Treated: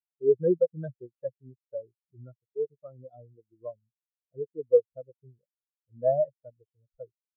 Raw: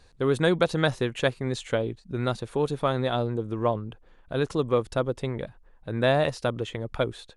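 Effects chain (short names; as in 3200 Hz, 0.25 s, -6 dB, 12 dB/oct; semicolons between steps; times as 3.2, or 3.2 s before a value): 2.32–3.82 G.711 law mismatch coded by A; spectral expander 4:1; gain -1.5 dB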